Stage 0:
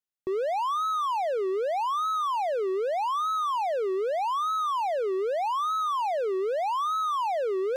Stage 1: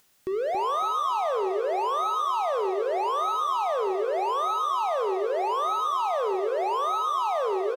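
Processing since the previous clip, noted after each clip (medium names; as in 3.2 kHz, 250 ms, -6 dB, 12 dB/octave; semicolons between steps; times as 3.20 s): upward compressor, threshold -42 dBFS; on a send: feedback delay 277 ms, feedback 31%, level -6.5 dB; on the sum: Schroeder reverb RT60 0.84 s, combs from 33 ms, DRR 9.5 dB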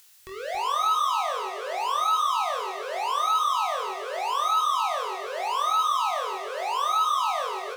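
amplifier tone stack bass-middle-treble 10-0-10; flutter echo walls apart 4 m, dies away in 0.28 s; trim +8 dB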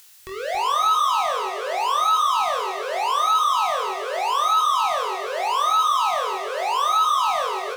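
saturation -16.5 dBFS, distortion -23 dB; trim +5.5 dB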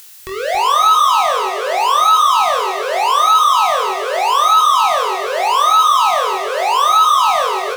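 treble shelf 11 kHz +3.5 dB; trim +8 dB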